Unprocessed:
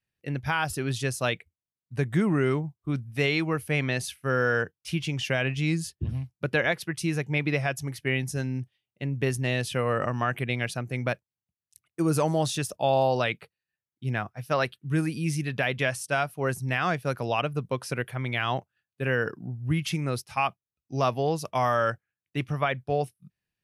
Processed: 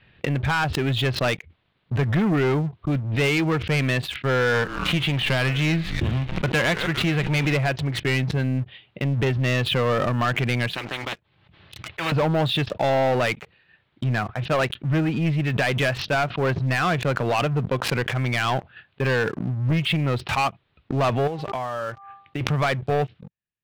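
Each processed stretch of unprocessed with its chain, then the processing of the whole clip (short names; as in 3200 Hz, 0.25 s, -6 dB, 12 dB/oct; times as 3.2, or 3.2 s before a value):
4.53–7.52 spectral whitening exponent 0.6 + frequency-shifting echo 0.143 s, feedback 48%, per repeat -140 Hz, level -21 dB
10.73–12.12 notch comb 240 Hz + spectral compressor 10:1
21.27–22.41 bell 650 Hz +2.5 dB 1.6 oct + de-hum 396 Hz, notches 3 + compressor 8:1, threshold -33 dBFS
whole clip: steep low-pass 3800 Hz 48 dB/oct; sample leveller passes 3; backwards sustainer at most 54 dB/s; gain -3 dB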